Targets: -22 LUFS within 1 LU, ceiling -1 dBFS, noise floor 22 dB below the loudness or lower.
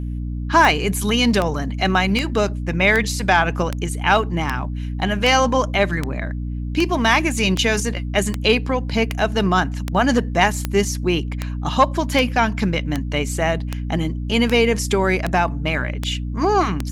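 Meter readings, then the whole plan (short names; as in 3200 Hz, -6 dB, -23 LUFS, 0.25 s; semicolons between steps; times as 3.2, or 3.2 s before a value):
clicks 22; hum 60 Hz; harmonics up to 300 Hz; hum level -23 dBFS; loudness -19.5 LUFS; peak -2.0 dBFS; loudness target -22.0 LUFS
-> de-click; de-hum 60 Hz, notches 5; gain -2.5 dB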